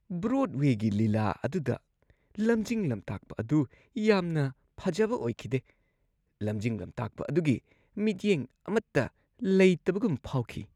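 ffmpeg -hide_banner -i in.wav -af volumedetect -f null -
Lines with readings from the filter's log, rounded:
mean_volume: -29.5 dB
max_volume: -10.0 dB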